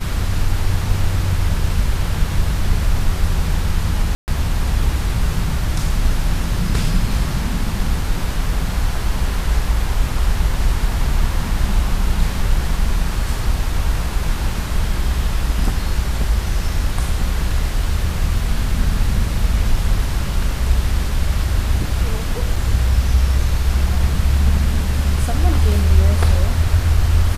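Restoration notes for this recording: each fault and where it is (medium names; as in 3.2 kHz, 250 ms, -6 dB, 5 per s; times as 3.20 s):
4.15–4.28 s: dropout 129 ms
22.56 s: dropout 3.4 ms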